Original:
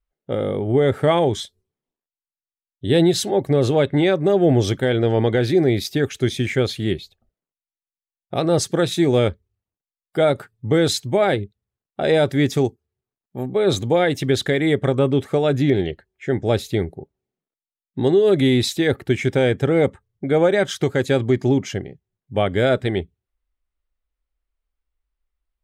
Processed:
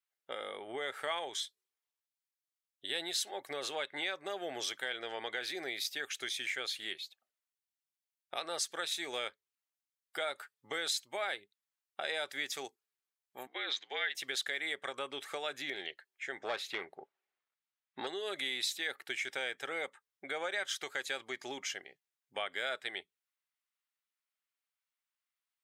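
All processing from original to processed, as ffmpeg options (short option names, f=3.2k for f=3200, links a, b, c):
-filter_complex "[0:a]asettb=1/sr,asplit=3[a][b][c];[a]atrim=end=13.474[d];[b]atrim=start=13.47:end=14.15,asetpts=PTS-STARTPTS,afade=t=in:d=0.004:c=qsin,afade=t=out:st=0.676:d=0.004:c=qsin,highpass=f=400:w=0.5412,highpass=f=400:w=1.3066,equalizer=f=450:t=q:w=4:g=-4,equalizer=f=690:t=q:w=4:g=-6,equalizer=f=1.2k:t=q:w=4:g=-7,equalizer=f=1.9k:t=q:w=4:g=7,equalizer=f=3.3k:t=q:w=4:g=3,lowpass=f=5k:w=0.5412,lowpass=f=5k:w=1.3066,afreqshift=-55[e];[c]atrim=start=14.146[f];[d][e]acrossfade=d=0.004:c1=hsin:c2=qsin[g];[g][f]acrossfade=d=0.004:c1=qsin:c2=hsin,asettb=1/sr,asplit=3[h][i][j];[h]atrim=end=16.404[k];[i]atrim=start=16.4:end=18.07,asetpts=PTS-STARTPTS,afade=t=in:d=0.004:c=qsin,afade=t=out:st=1.666:d=0.004:c=qsin,bass=f=250:g=7,treble=f=4k:g=-5,asplit=2[l][m];[m]highpass=f=720:p=1,volume=16dB,asoftclip=type=tanh:threshold=-4dB[n];[l][n]amix=inputs=2:normalize=0,lowpass=f=1.7k:p=1,volume=-6dB[o];[j]atrim=start=18.066[p];[k][o]acrossfade=d=0.004:c1=hsin:c2=qsin[q];[q][p]acrossfade=d=0.004:c1=qsin:c2=hsin,highpass=1.3k,acompressor=threshold=-40dB:ratio=2"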